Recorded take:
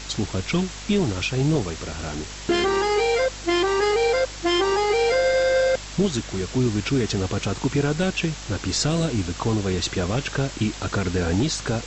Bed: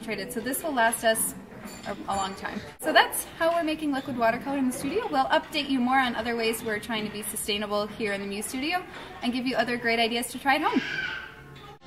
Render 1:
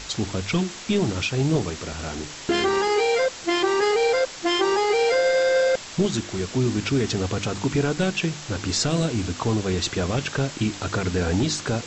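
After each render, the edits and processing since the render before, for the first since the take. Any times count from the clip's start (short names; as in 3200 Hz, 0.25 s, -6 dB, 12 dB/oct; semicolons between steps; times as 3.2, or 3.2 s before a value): de-hum 50 Hz, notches 7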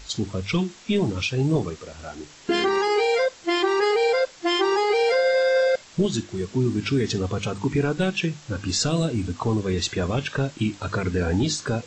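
noise print and reduce 10 dB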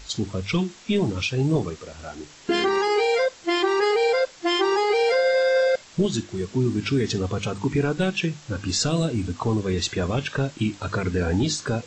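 nothing audible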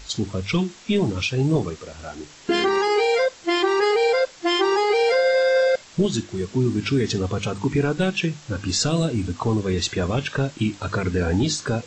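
gain +1.5 dB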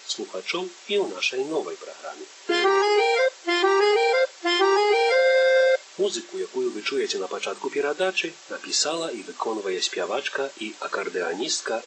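HPF 370 Hz 24 dB/oct; comb 5.2 ms, depth 34%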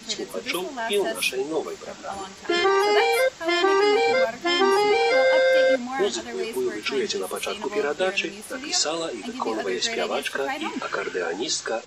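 add bed -7 dB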